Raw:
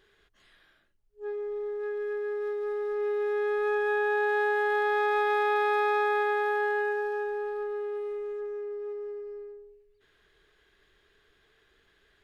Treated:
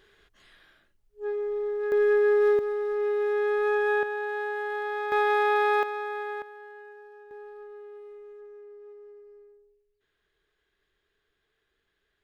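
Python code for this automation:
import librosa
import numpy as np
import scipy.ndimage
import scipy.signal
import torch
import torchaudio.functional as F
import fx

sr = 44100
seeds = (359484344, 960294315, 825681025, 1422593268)

y = fx.gain(x, sr, db=fx.steps((0.0, 4.0), (1.92, 11.0), (2.59, 2.5), (4.03, -5.0), (5.12, 2.5), (5.83, -7.0), (6.42, -18.0), (7.31, -11.0)))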